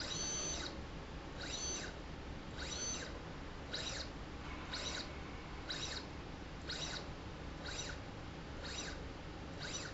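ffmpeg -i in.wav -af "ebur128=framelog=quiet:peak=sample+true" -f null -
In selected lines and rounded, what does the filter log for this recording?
Integrated loudness:
  I:         -44.1 LUFS
  Threshold: -54.1 LUFS
Loudness range:
  LRA:         2.6 LU
  Threshold: -64.4 LUFS
  LRA low:   -45.6 LUFS
  LRA high:  -43.0 LUFS
Sample peak:
  Peak:      -28.7 dBFS
True peak:
  Peak:      -28.7 dBFS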